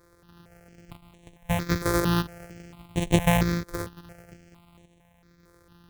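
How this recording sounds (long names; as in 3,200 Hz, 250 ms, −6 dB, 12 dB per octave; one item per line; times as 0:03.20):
a buzz of ramps at a fixed pitch in blocks of 256 samples
sample-and-hold tremolo
notches that jump at a steady rate 4.4 Hz 770–4,900 Hz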